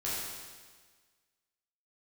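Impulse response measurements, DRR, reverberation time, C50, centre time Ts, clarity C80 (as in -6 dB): -8.5 dB, 1.5 s, -2.0 dB, 0.107 s, 0.5 dB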